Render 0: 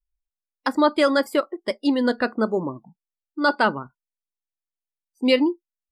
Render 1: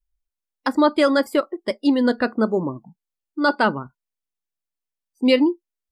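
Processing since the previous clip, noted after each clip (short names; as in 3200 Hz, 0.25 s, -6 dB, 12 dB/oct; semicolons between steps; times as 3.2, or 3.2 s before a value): low shelf 330 Hz +5 dB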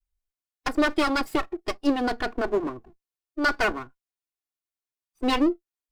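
minimum comb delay 2.8 ms; gain -2.5 dB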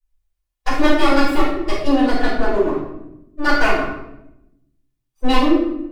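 reverb RT60 0.85 s, pre-delay 4 ms, DRR -12 dB; gain -7.5 dB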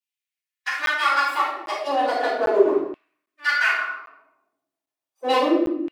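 LFO high-pass saw down 0.34 Hz 350–2800 Hz; crackling interface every 0.80 s, samples 512, zero, from 0.86; gain -4 dB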